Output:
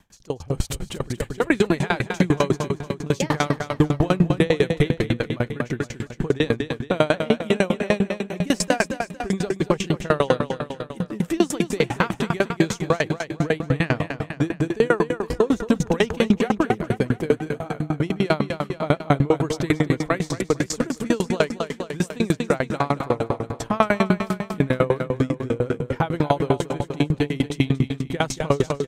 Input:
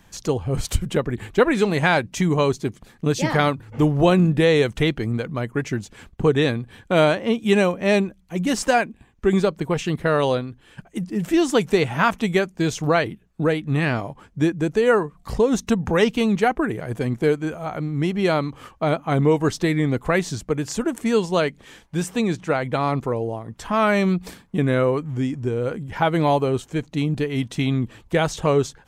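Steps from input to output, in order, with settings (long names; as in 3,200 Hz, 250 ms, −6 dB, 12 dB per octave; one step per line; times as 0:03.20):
0:00.74–0:01.47: downward compressor 4 to 1, threshold −22 dBFS, peak gain reduction 10 dB
brickwall limiter −11.5 dBFS, peak gain reduction 7 dB
automatic gain control gain up to 10 dB
on a send: repeating echo 231 ms, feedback 60%, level −7 dB
on the sum: tremolo with a ramp in dB decaying 10 Hz, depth 30 dB
level −1 dB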